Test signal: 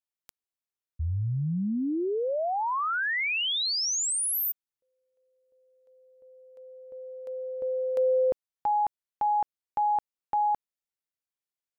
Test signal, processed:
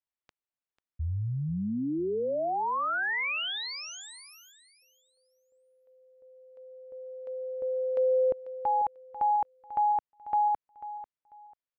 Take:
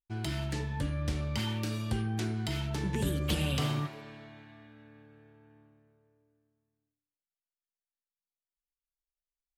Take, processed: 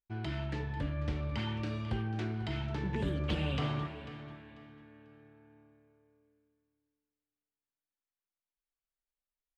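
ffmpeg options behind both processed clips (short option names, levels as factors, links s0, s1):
-filter_complex "[0:a]lowpass=2800,equalizer=f=160:t=o:w=2:g=-2,asplit=2[s0][s1];[s1]aecho=0:1:493|986|1479:0.188|0.0471|0.0118[s2];[s0][s2]amix=inputs=2:normalize=0,volume=0.891"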